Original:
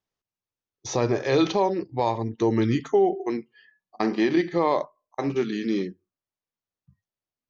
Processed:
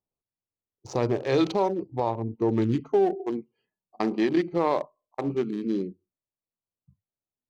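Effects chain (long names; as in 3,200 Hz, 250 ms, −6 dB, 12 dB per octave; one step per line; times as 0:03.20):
adaptive Wiener filter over 25 samples
0:02.00–0:02.49: high-shelf EQ 2,800 Hz −11 dB
level −1.5 dB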